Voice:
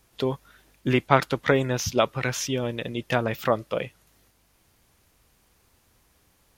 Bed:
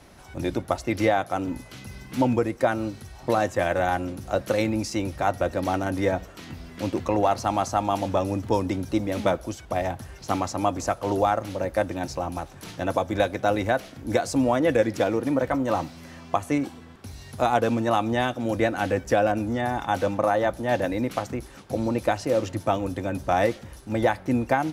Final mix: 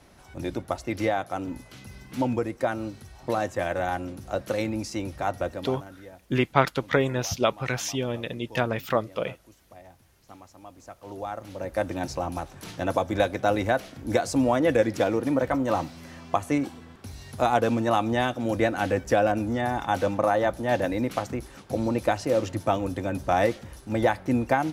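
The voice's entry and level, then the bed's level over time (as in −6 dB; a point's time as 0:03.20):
5.45 s, −1.5 dB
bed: 0:05.45 −4 dB
0:06.04 −22.5 dB
0:10.67 −22.5 dB
0:11.93 −0.5 dB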